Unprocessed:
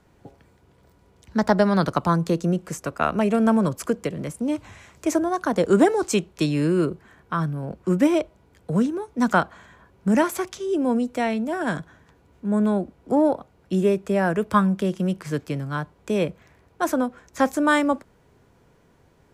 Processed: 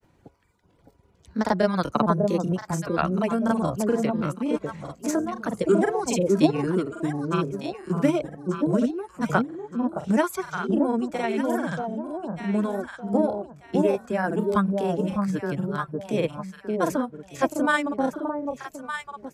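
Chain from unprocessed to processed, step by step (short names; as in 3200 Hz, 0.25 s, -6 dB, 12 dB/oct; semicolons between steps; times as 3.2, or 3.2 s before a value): reverb removal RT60 1.3 s; echo with dull and thin repeats by turns 0.609 s, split 890 Hz, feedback 52%, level -2.5 dB; grains, spray 33 ms, pitch spread up and down by 0 st; gain -1 dB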